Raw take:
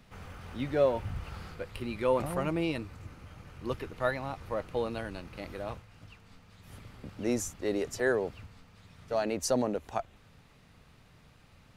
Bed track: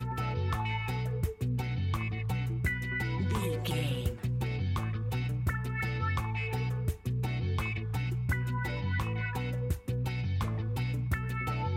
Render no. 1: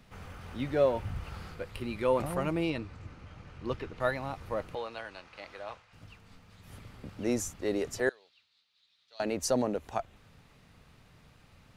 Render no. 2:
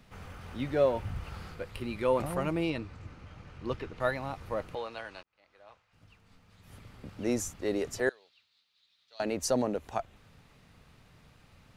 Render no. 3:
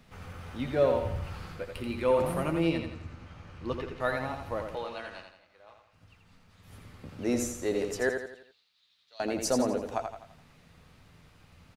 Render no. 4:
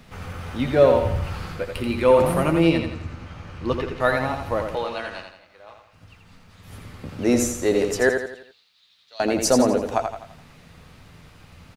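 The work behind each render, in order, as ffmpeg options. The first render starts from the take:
-filter_complex "[0:a]asettb=1/sr,asplit=3[a][b][c];[a]atrim=end=2.704[d];[b]atrim=start=2.7:end=4,asetpts=PTS-STARTPTS,afade=t=in:d=0.004:c=qsin,afade=t=out:st=1.296:d=0.004:c=qsin,lowpass=6k[e];[c]atrim=start=3.996[f];[d][e]acrossfade=d=0.004:c1=hsin:c2=qsin[g];[g][f]acrossfade=d=0.004:c1=qsin:c2=hsin,asettb=1/sr,asplit=3[h][i][j];[h]atrim=end=4.754[k];[i]atrim=start=4.75:end=5.93,asetpts=PTS-STARTPTS,afade=t=in:d=0.004:c=qsin,afade=t=out:st=1.176:d=0.004:c=qsin,acrossover=split=550 7600:gain=0.158 1 0.0891[l][m][n];[l][m][n]amix=inputs=3:normalize=0[o];[j]atrim=start=5.926[p];[k][o]acrossfade=d=0.004:c1=hsin:c2=qsin[q];[q][p]acrossfade=d=0.004:c1=qsin:c2=hsin,asettb=1/sr,asplit=3[r][s][t];[r]atrim=end=8.094[u];[s]atrim=start=8.09:end=9.2,asetpts=PTS-STARTPTS,afade=t=in:d=0.004:c=qsin,afade=t=out:st=1.106:d=0.004:c=qsin,bandpass=f=3.9k:t=q:w=4.6[v];[t]atrim=start=9.196[w];[u][v]acrossfade=d=0.004:c1=hsin:c2=qsin[x];[x][w]acrossfade=d=0.004:c1=qsin:c2=hsin"
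-filter_complex "[0:a]asplit=2[a][b];[a]atrim=end=5.23,asetpts=PTS-STARTPTS,afade=t=out:st=5.226:d=0.004:c=hsin[c];[b]atrim=start=5.23,asetpts=PTS-STARTPTS,afade=t=in:d=2.03[d];[c][d]concat=n=2:v=0:a=1"
-filter_complex "[0:a]asplit=2[a][b];[b]adelay=12,volume=-11dB[c];[a][c]amix=inputs=2:normalize=0,aecho=1:1:84|168|252|336|420:0.501|0.221|0.097|0.0427|0.0188"
-af "volume=9.5dB"

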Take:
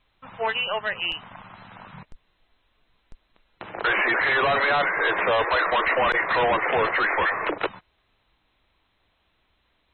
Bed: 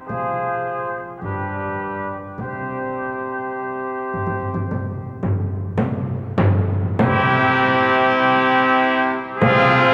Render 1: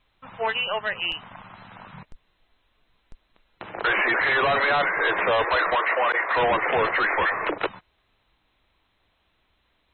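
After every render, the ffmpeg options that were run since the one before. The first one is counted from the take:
-filter_complex "[0:a]asettb=1/sr,asplit=3[a][b][c];[a]atrim=end=5.754[d];[b]atrim=start=5.75:end=6.37,asetpts=PTS-STARTPTS,afade=t=in:d=0.004:c=qsin,afade=t=out:st=0.616:d=0.004:c=qsin,highpass=440,lowpass=2.8k[e];[c]atrim=start=6.366[f];[d][e]acrossfade=d=0.004:c1=hsin:c2=qsin[g];[g][f]acrossfade=d=0.004:c1=qsin:c2=hsin"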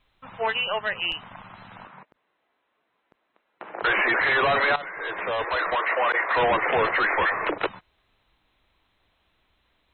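-filter_complex "[0:a]asettb=1/sr,asplit=3[a][b][c];[a]atrim=end=1.874[d];[b]atrim=start=1.87:end=3.82,asetpts=PTS-STARTPTS,afade=t=in:d=0.004:c=qsin,afade=t=out:st=1.946:d=0.004:c=qsin,highpass=310,lowpass=2k[e];[c]atrim=start=3.816[f];[d][e]acrossfade=d=0.004:c1=hsin:c2=qsin[g];[g][f]acrossfade=d=0.004:c1=qsin:c2=hsin,asplit=2[h][i];[h]atrim=end=4.76,asetpts=PTS-STARTPTS,afade=t=out:st=4.756:d=0.004:c=hsin:silence=0.177828[j];[i]atrim=start=4.76,asetpts=PTS-STARTPTS,afade=t=in:d=1.4:silence=0.177828[k];[j][k]concat=n=2:v=0:a=1"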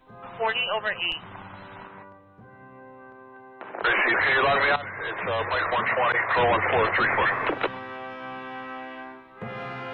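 -filter_complex "[1:a]volume=-21dB[a];[0:a][a]amix=inputs=2:normalize=0"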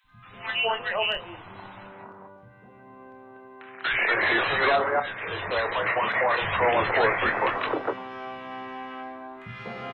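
-filter_complex "[0:a]asplit=2[a][b];[b]adelay=26,volume=-8.5dB[c];[a][c]amix=inputs=2:normalize=0,acrossover=split=180|1400[d][e][f];[d]adelay=40[g];[e]adelay=240[h];[g][h][f]amix=inputs=3:normalize=0"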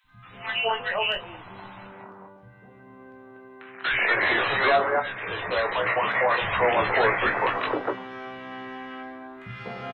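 -filter_complex "[0:a]asplit=2[a][b];[b]adelay=16,volume=-7.5dB[c];[a][c]amix=inputs=2:normalize=0"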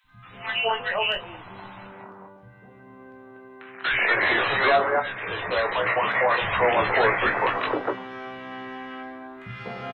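-af "volume=1dB"

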